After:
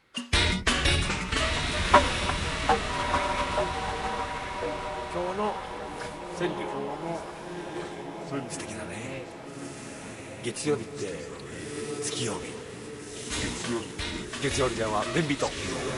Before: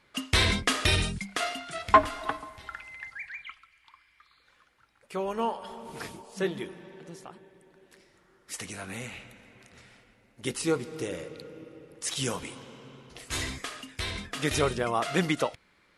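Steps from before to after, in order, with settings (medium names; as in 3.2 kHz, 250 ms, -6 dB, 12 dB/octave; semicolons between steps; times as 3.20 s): ever faster or slower copies 248 ms, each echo -4 st, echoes 3, each echo -6 dB; echo that smears into a reverb 1294 ms, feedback 47%, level -4 dB; formant-preserving pitch shift -1.5 st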